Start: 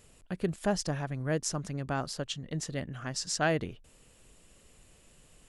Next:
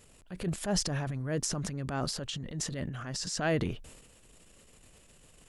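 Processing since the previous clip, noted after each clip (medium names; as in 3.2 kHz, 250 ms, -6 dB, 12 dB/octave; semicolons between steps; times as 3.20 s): transient shaper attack -8 dB, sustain +9 dB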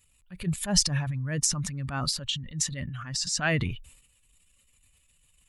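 expander on every frequency bin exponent 1.5; FFT filter 150 Hz 0 dB, 400 Hz -11 dB, 2 kHz +3 dB; trim +7.5 dB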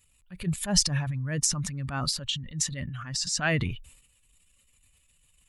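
no audible change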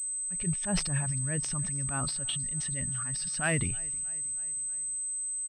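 feedback delay 316 ms, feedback 58%, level -23.5 dB; class-D stage that switches slowly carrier 8.2 kHz; trim -3 dB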